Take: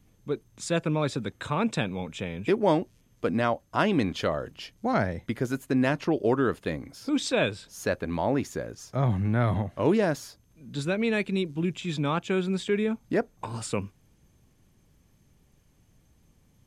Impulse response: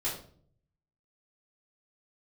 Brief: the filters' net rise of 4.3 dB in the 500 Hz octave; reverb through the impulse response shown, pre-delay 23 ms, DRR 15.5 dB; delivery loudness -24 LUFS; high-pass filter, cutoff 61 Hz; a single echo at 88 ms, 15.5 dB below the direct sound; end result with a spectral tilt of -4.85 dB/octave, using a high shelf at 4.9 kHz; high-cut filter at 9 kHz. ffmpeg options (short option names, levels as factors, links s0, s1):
-filter_complex "[0:a]highpass=61,lowpass=9000,equalizer=f=500:t=o:g=5.5,highshelf=f=4900:g=-7.5,aecho=1:1:88:0.168,asplit=2[s0][s1];[1:a]atrim=start_sample=2205,adelay=23[s2];[s1][s2]afir=irnorm=-1:irlink=0,volume=0.0944[s3];[s0][s3]amix=inputs=2:normalize=0,volume=1.19"